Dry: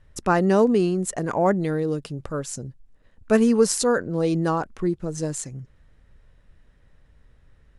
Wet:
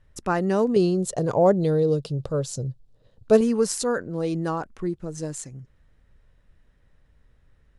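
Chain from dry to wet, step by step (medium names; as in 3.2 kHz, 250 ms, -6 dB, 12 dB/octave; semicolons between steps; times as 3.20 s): 0.76–3.41 s: ten-band graphic EQ 125 Hz +12 dB, 250 Hz -3 dB, 500 Hz +10 dB, 2 kHz -8 dB, 4 kHz +10 dB; trim -4 dB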